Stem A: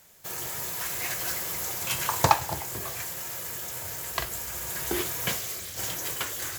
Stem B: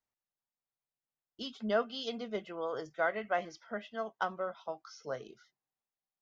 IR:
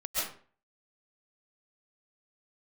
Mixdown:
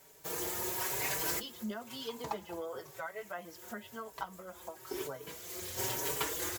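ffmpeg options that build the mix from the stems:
-filter_complex "[0:a]equalizer=frequency=390:width=1.7:gain=10.5,volume=-1dB[link_01];[1:a]acompressor=threshold=-34dB:ratio=6,volume=0.5dB,asplit=2[link_02][link_03];[link_03]apad=whole_len=290506[link_04];[link_01][link_04]sidechaincompress=threshold=-56dB:ratio=12:attack=16:release=351[link_05];[link_05][link_02]amix=inputs=2:normalize=0,equalizer=frequency=940:width_type=o:width=0.22:gain=6,asplit=2[link_06][link_07];[link_07]adelay=4.8,afreqshift=1[link_08];[link_06][link_08]amix=inputs=2:normalize=1"

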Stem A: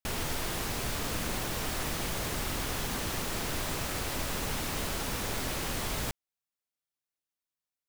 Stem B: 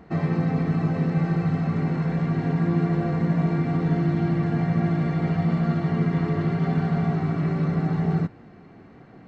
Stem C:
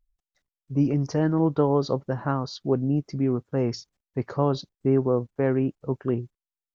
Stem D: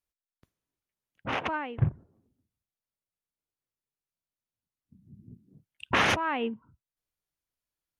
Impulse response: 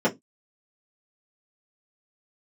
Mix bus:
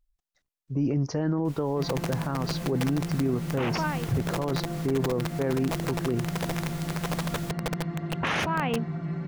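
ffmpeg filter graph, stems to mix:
-filter_complex "[0:a]adelay=1400,volume=-8dB[link_01];[1:a]aecho=1:1:5.8:0.86,aeval=exprs='(mod(3.55*val(0)+1,2)-1)/3.55':channel_layout=same,adelay=1650,volume=-12.5dB[link_02];[2:a]volume=0.5dB,asplit=2[link_03][link_04];[3:a]adelay=2300,volume=2dB[link_05];[link_04]apad=whole_len=409266[link_06];[link_01][link_06]sidechaincompress=threshold=-24dB:ratio=8:attack=16:release=468[link_07];[link_07][link_02][link_03][link_05]amix=inputs=4:normalize=0,alimiter=limit=-18dB:level=0:latency=1:release=17"

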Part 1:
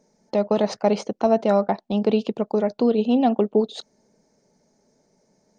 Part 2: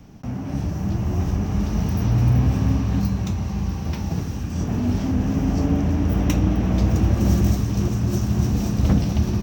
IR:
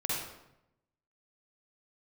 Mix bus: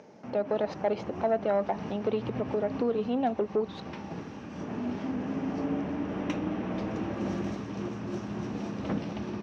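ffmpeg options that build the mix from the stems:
-filter_complex "[0:a]acompressor=mode=upward:threshold=-31dB:ratio=2.5,asoftclip=type=tanh:threshold=-10.5dB,volume=-5.5dB,asplit=2[link_01][link_02];[1:a]bandreject=frequency=720:width=17,volume=-4.5dB[link_03];[link_02]apad=whole_len=415508[link_04];[link_03][link_04]sidechaincompress=threshold=-31dB:ratio=8:attack=16:release=143[link_05];[link_01][link_05]amix=inputs=2:normalize=0,highpass=290,lowpass=2800"

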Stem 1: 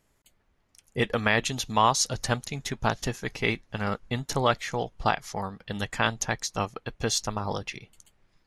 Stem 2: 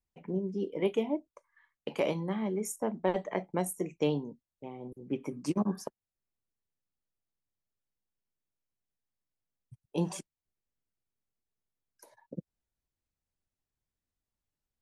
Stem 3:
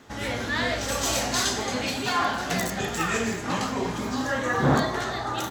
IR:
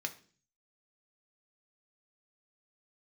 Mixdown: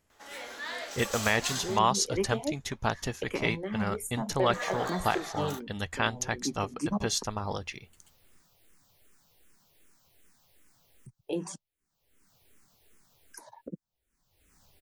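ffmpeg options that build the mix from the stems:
-filter_complex "[0:a]equalizer=frequency=84:width=5.4:gain=11,volume=-3dB[link_01];[1:a]acompressor=mode=upward:threshold=-36dB:ratio=2.5,asplit=2[link_02][link_03];[link_03]afreqshift=-2.6[link_04];[link_02][link_04]amix=inputs=2:normalize=1,adelay=1350,volume=2dB[link_05];[2:a]highpass=480,highshelf=frequency=11000:gain=8.5,adelay=100,volume=-10.5dB,asplit=3[link_06][link_07][link_08];[link_06]atrim=end=1.79,asetpts=PTS-STARTPTS,afade=type=out:start_time=1.786:duration=0.004:curve=hsin[link_09];[link_07]atrim=start=1.79:end=4.53,asetpts=PTS-STARTPTS,volume=0[link_10];[link_08]atrim=start=4.53,asetpts=PTS-STARTPTS,afade=type=in:duration=0.004:curve=hsin[link_11];[link_09][link_10][link_11]concat=n=3:v=0:a=1[link_12];[link_01][link_05][link_12]amix=inputs=3:normalize=0,lowshelf=frequency=150:gain=-3"

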